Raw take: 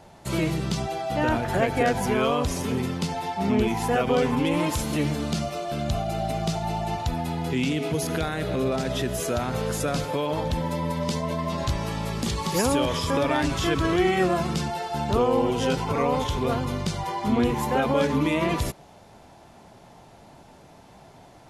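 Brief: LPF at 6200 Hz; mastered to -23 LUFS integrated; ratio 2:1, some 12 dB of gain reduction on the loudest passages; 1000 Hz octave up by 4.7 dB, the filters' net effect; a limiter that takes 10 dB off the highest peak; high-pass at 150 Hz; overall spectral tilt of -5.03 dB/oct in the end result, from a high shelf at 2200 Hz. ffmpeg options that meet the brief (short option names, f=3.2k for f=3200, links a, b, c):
-af "highpass=150,lowpass=6.2k,equalizer=f=1k:t=o:g=7,highshelf=f=2.2k:g=-5,acompressor=threshold=-39dB:ratio=2,volume=16dB,alimiter=limit=-14dB:level=0:latency=1"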